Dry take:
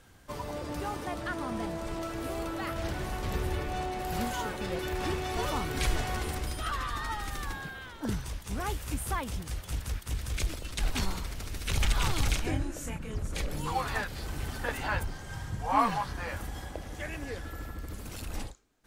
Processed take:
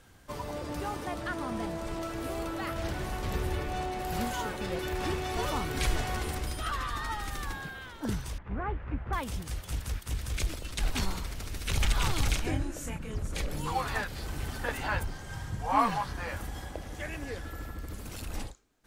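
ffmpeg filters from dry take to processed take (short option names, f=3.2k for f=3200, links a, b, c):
-filter_complex "[0:a]asettb=1/sr,asplit=3[a][b][c];[a]atrim=end=8.384[d];[b]atrim=start=8.38:end=9.13,asetpts=PTS-STARTPTS,afade=t=in:d=0.004:c=qsin,afade=t=out:st=0.746:d=0.004:c=qsin,lowpass=f=2k:w=0.5412,lowpass=f=2k:w=1.3066[e];[c]atrim=start=9.126[f];[d][e]acrossfade=d=0.004:c1=hsin:c2=qsin[g];[g][f]acrossfade=d=0.004:c1=qsin:c2=hsin"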